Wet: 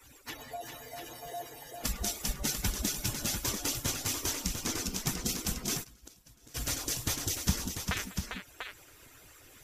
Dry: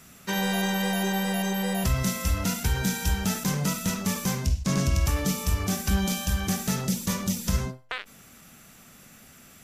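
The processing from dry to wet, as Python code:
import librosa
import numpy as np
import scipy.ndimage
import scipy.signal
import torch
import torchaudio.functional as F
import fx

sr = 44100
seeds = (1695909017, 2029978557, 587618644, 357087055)

y = fx.hpss_only(x, sr, part='percussive')
y = fx.echo_multitap(y, sr, ms=(105, 199, 399, 693), db=(-19.5, -19.0, -6.5, -6.5))
y = fx.gate_flip(y, sr, shuts_db=-26.0, range_db=-25, at=(5.83, 6.54), fade=0.02)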